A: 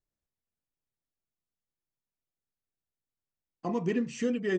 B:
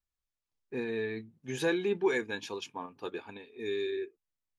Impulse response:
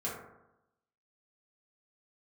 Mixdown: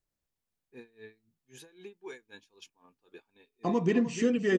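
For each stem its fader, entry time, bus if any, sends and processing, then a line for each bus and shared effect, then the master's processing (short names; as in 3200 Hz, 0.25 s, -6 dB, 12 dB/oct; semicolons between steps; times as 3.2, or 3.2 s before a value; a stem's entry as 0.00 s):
+3.0 dB, 0.00 s, no send, echo send -13.5 dB, dry
-12.5 dB, 0.00 s, no send, no echo send, high shelf 5000 Hz +9 dB; vocal rider within 3 dB 2 s; dB-linear tremolo 3.8 Hz, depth 23 dB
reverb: off
echo: echo 0.301 s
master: dry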